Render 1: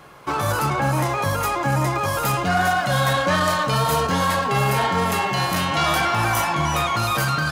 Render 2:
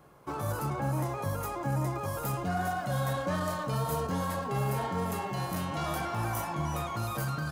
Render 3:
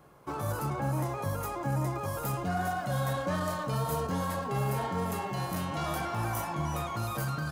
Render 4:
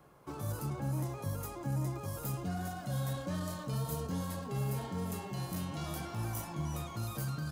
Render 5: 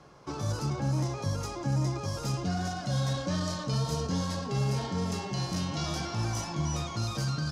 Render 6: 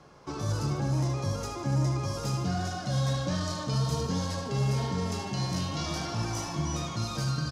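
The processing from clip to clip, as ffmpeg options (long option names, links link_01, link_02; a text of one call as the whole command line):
ffmpeg -i in.wav -af "equalizer=frequency=2900:width=0.39:gain=-11,volume=-8dB" out.wav
ffmpeg -i in.wav -af anull out.wav
ffmpeg -i in.wav -filter_complex "[0:a]acrossover=split=400|3000[link_01][link_02][link_03];[link_02]acompressor=threshold=-59dB:ratio=1.5[link_04];[link_01][link_04][link_03]amix=inputs=3:normalize=0,volume=-3dB" out.wav
ffmpeg -i in.wav -af "lowpass=frequency=5500:width_type=q:width=3,volume=6dB" out.wav
ffmpeg -i in.wav -af "aecho=1:1:76|152|228|304|380|456|532:0.376|0.207|0.114|0.0625|0.0344|0.0189|0.0104" out.wav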